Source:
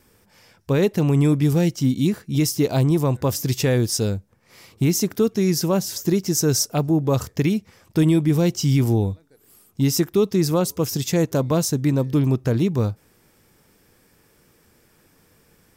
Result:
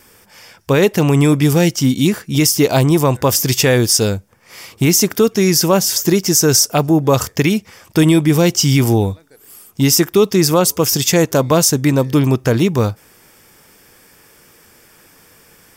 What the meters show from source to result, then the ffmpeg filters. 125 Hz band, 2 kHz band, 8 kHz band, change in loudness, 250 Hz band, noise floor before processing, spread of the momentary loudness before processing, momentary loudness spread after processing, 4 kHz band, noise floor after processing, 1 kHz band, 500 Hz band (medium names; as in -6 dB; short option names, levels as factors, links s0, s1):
+4.0 dB, +12.0 dB, +11.0 dB, +7.0 dB, +5.5 dB, -59 dBFS, 5 LU, 5 LU, +11.5 dB, -49 dBFS, +10.5 dB, +7.5 dB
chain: -af "lowshelf=f=470:g=-9.5,bandreject=f=4000:w=12,alimiter=level_in=5.01:limit=0.891:release=50:level=0:latency=1,volume=0.891"